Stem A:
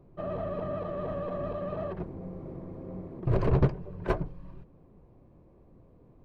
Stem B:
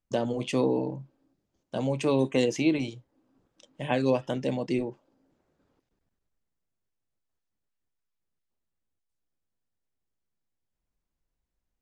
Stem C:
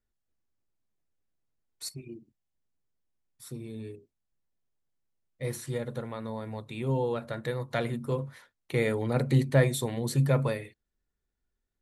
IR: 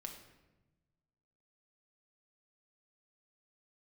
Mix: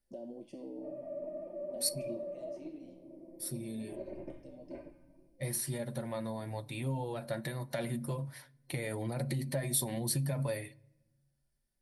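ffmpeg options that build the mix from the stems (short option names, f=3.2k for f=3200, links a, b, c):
-filter_complex "[0:a]lowpass=f=2.3k:t=q:w=4.7,aecho=1:1:3.3:0.48,adelay=650,volume=-6dB,asplit=2[a][b];[b]volume=-16.5dB[c];[1:a]acompressor=threshold=-31dB:ratio=4,volume=1dB,asplit=2[d][e];[e]volume=-20dB[f];[2:a]alimiter=limit=-21dB:level=0:latency=1:release=60,acompressor=threshold=-31dB:ratio=4,volume=2.5dB,asplit=3[g][h][i];[h]volume=-15.5dB[j];[i]apad=whole_len=521245[k];[d][k]sidechaincompress=threshold=-54dB:ratio=8:attack=16:release=1260[l];[a][l]amix=inputs=2:normalize=0,asuperpass=centerf=370:order=4:qfactor=0.94,alimiter=level_in=7dB:limit=-24dB:level=0:latency=1:release=276,volume=-7dB,volume=0dB[m];[3:a]atrim=start_sample=2205[n];[c][f][j]amix=inputs=3:normalize=0[o];[o][n]afir=irnorm=-1:irlink=0[p];[g][m][p]amix=inputs=3:normalize=0,flanger=delay=5:depth=1.9:regen=-42:speed=0.52:shape=sinusoidal,superequalizer=7b=0.447:8b=1.41:10b=0.562:14b=2:16b=3.55"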